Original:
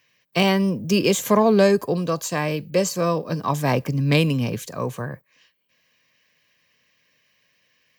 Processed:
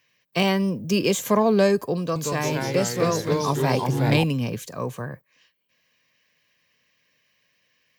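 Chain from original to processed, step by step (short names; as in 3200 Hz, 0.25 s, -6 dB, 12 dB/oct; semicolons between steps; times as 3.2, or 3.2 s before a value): 1.99–4.24 echoes that change speed 0.166 s, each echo -2 st, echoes 3; gain -2.5 dB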